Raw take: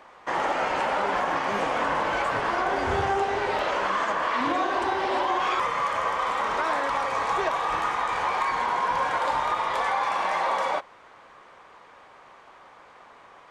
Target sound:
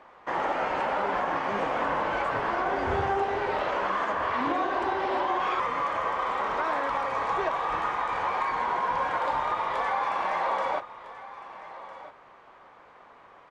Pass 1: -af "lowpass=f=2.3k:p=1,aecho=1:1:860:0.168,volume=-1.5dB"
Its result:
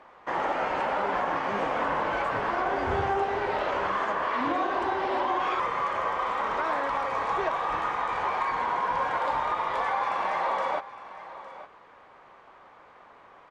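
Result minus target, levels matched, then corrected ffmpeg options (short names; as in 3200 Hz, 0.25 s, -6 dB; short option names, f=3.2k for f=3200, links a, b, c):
echo 0.445 s early
-af "lowpass=f=2.3k:p=1,aecho=1:1:1305:0.168,volume=-1.5dB"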